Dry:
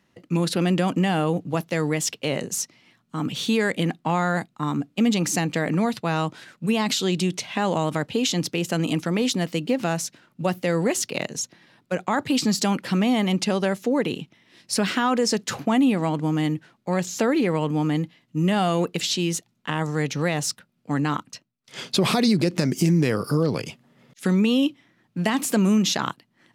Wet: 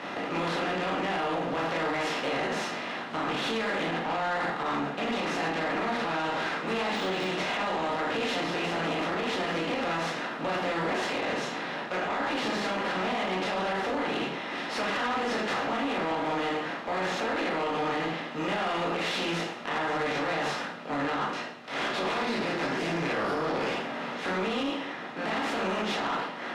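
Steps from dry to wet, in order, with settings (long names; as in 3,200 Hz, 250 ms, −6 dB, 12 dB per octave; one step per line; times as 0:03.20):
compressor on every frequency bin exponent 0.4
high-shelf EQ 8,400 Hz −10 dB
convolution reverb RT60 0.60 s, pre-delay 6 ms, DRR −5.5 dB
automatic gain control
three-way crossover with the lows and the highs turned down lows −16 dB, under 440 Hz, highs −20 dB, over 3,400 Hz
0:06.95–0:07.38: de-essing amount 75%
brickwall limiter −13.5 dBFS, peak gain reduction 9 dB
soft clipping −19 dBFS, distortion −15 dB
level −4.5 dB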